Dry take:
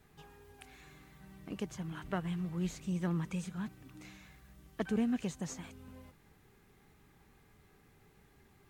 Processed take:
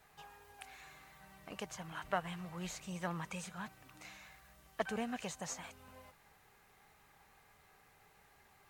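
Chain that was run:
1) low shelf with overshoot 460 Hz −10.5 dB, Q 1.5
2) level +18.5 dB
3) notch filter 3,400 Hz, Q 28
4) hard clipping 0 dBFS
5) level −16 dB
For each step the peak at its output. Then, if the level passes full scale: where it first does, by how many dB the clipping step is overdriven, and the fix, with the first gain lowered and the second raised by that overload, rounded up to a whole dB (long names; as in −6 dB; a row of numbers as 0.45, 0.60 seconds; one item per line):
−22.5, −4.0, −4.0, −4.0, −20.0 dBFS
no step passes full scale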